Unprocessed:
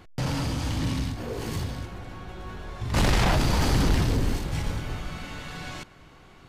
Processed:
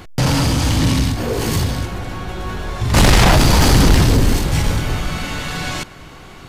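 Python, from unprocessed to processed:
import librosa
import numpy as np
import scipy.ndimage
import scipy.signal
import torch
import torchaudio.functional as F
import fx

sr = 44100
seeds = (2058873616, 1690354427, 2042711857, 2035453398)

p1 = fx.high_shelf(x, sr, hz=5400.0, db=5.5)
p2 = 10.0 ** (-25.5 / 20.0) * np.tanh(p1 / 10.0 ** (-25.5 / 20.0))
p3 = p1 + (p2 * 10.0 ** (-3.5 / 20.0))
y = p3 * 10.0 ** (8.5 / 20.0)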